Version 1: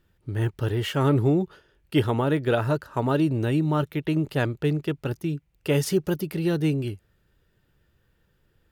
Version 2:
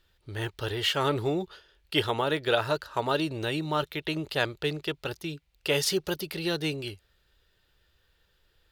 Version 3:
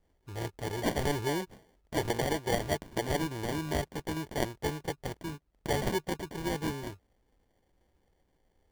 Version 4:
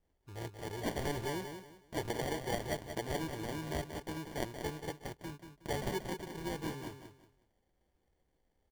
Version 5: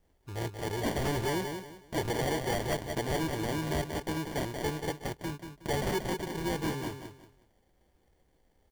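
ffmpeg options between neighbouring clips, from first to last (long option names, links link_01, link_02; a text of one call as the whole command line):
ffmpeg -i in.wav -af "equalizer=frequency=125:width_type=o:width=1:gain=-10,equalizer=frequency=250:width_type=o:width=1:gain=-10,equalizer=frequency=4000:width_type=o:width=1:gain=10" out.wav
ffmpeg -i in.wav -af "acrusher=samples=34:mix=1:aa=0.000001,volume=-3.5dB" out.wav
ffmpeg -i in.wav -af "aecho=1:1:183|366|549:0.398|0.111|0.0312,volume=-6.5dB" out.wav
ffmpeg -i in.wav -af "aeval=exprs='0.0944*sin(PI/2*2.82*val(0)/0.0944)':channel_layout=same,volume=-4.5dB" out.wav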